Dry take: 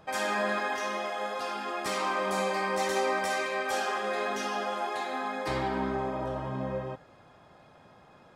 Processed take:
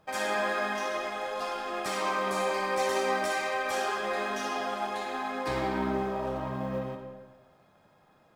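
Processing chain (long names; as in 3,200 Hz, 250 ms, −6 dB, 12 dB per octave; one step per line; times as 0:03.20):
mu-law and A-law mismatch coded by A
comb and all-pass reverb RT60 1.3 s, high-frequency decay 0.7×, pre-delay 20 ms, DRR 5 dB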